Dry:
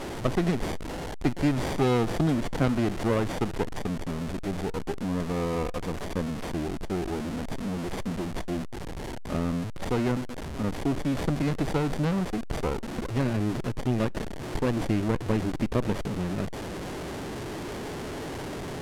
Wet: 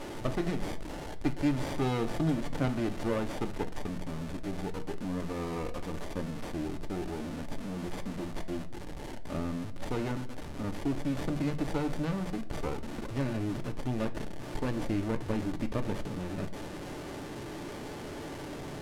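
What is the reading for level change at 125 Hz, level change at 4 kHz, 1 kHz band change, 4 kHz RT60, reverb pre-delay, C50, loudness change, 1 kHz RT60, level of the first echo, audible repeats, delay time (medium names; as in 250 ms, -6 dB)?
-6.0 dB, -5.5 dB, -5.5 dB, 0.40 s, 3 ms, 16.0 dB, -5.5 dB, 0.45 s, no echo, no echo, no echo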